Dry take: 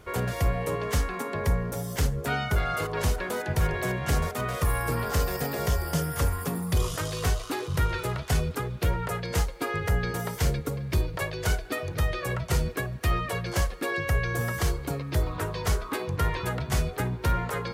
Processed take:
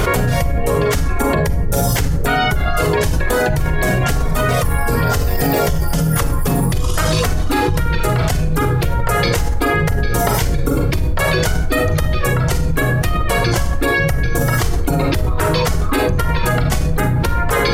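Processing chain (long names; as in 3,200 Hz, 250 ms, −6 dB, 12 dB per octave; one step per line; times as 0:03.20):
sub-octave generator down 2 octaves, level +1 dB
reverb reduction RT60 1.6 s
on a send at −4 dB: low-shelf EQ 350 Hz +4.5 dB + convolution reverb RT60 0.50 s, pre-delay 33 ms
on the sum: envelope flattener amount 100%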